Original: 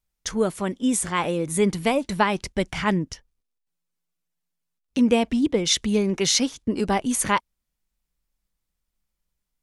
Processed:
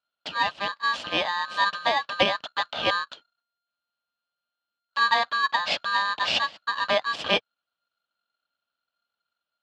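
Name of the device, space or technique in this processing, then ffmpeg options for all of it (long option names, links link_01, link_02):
ring modulator pedal into a guitar cabinet: -af "aeval=exprs='val(0)*sgn(sin(2*PI*1400*n/s))':channel_layout=same,highpass=98,equalizer=frequency=120:width_type=q:width=4:gain=-8,equalizer=frequency=380:width_type=q:width=4:gain=-8,equalizer=frequency=610:width_type=q:width=4:gain=6,equalizer=frequency=1400:width_type=q:width=4:gain=-8,equalizer=frequency=2100:width_type=q:width=4:gain=-8,equalizer=frequency=3000:width_type=q:width=4:gain=7,lowpass=frequency=3900:width=0.5412,lowpass=frequency=3900:width=1.3066"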